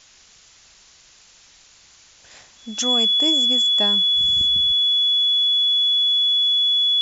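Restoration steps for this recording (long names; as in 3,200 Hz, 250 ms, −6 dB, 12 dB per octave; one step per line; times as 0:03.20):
notch filter 3,400 Hz, Q 30
noise reduction from a noise print 16 dB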